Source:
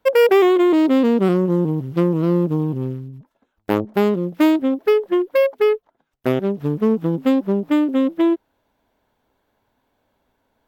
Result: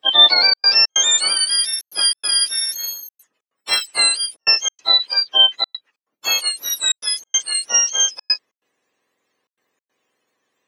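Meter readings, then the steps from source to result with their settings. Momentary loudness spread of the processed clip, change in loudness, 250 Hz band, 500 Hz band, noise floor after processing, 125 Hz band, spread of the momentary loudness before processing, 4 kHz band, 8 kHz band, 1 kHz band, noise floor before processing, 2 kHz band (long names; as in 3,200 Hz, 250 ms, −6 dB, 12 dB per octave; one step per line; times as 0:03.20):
9 LU, +3.0 dB, below −30 dB, −19.5 dB, below −85 dBFS, below −35 dB, 10 LU, +24.0 dB, can't be measured, −3.0 dB, −73 dBFS, +6.0 dB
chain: frequency axis turned over on the octave scale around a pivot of 1,300 Hz
high-pass filter 260 Hz 24 dB per octave
dynamic equaliser 2,900 Hz, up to +4 dB, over −29 dBFS, Q 1.2
gate pattern "xxxxx.xx.xxx" 141 BPM −60 dB
level +1.5 dB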